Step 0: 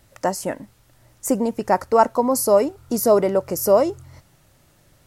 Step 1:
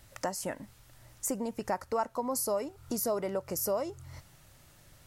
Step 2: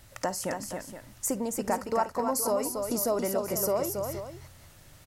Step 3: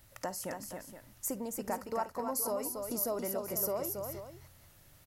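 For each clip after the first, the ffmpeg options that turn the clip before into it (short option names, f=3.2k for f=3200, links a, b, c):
-af "equalizer=f=340:w=0.51:g=-5.5,acompressor=threshold=-34dB:ratio=2.5"
-af "aecho=1:1:54|277|471:0.119|0.531|0.251,volume=3dB"
-af "aexciter=amount=2.8:drive=2:freq=11k,volume=-7.5dB"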